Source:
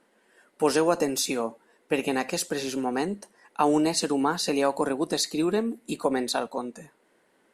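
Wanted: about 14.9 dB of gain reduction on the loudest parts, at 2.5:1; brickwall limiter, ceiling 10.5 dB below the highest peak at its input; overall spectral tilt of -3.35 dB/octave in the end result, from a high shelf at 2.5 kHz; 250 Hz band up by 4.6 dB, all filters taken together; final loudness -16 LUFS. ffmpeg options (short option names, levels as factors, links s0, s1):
-af "equalizer=f=250:t=o:g=5.5,highshelf=f=2500:g=8,acompressor=threshold=0.0112:ratio=2.5,volume=15,alimiter=limit=0.501:level=0:latency=1"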